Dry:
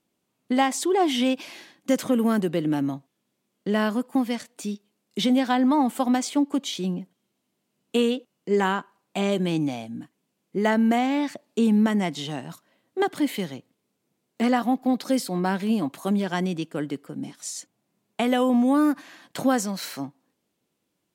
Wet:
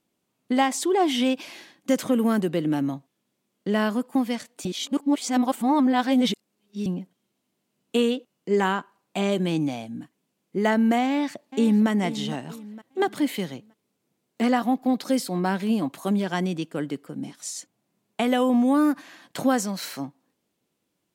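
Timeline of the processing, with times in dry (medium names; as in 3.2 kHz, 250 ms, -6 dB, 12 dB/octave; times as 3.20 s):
4.65–6.86 s: reverse
11.06–11.89 s: echo throw 460 ms, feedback 40%, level -13 dB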